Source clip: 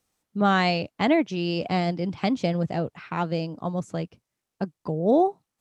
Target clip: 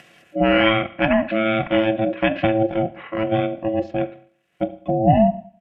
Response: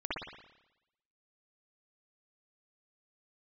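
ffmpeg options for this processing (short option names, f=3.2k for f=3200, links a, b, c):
-filter_complex "[0:a]acompressor=mode=upward:threshold=-37dB:ratio=2.5,firequalizer=gain_entry='entry(110,0);entry(170,15);entry(280,7);entry(410,12);entry(640,-5);entry(1100,-5);entry(1600,0);entry(3500,13);entry(6200,-14);entry(10000,-16)':delay=0.05:min_phase=1,asplit=2[a][b];[1:a]atrim=start_sample=2205,asetrate=79380,aresample=44100[c];[b][c]afir=irnorm=-1:irlink=0,volume=-10.5dB[d];[a][d]amix=inputs=2:normalize=0,asetrate=27781,aresample=44100,atempo=1.5874,aecho=1:1:3.3:0.55,crystalizer=i=5:c=0,aeval=exprs='val(0)*sin(2*PI*440*n/s)':c=same,volume=-1.5dB"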